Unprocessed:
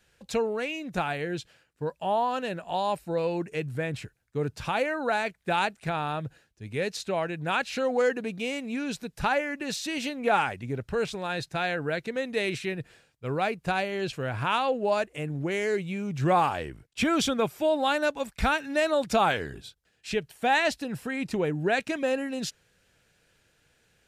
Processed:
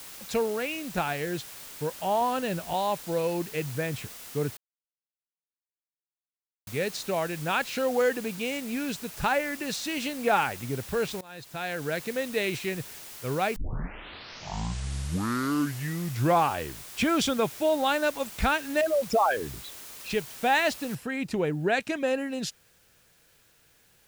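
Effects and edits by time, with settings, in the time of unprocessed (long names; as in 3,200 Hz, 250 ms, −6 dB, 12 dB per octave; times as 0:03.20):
0:02.21–0:02.74: low-shelf EQ 180 Hz +10.5 dB
0:04.57–0:06.67: silence
0:11.21–0:12.02: fade in, from −21 dB
0:13.56: tape start 2.92 s
0:18.81–0:20.10: spectral envelope exaggerated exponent 3
0:20.95: noise floor change −44 dB −64 dB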